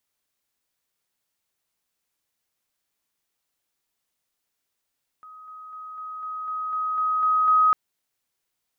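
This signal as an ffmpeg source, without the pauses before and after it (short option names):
-f lavfi -i "aevalsrc='pow(10,(-41.5+3*floor(t/0.25))/20)*sin(2*PI*1260*t)':d=2.5:s=44100"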